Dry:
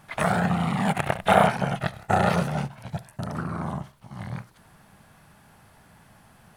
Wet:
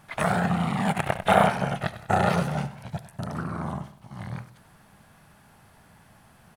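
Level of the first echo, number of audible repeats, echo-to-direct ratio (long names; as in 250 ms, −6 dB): −15.5 dB, 2, −14.5 dB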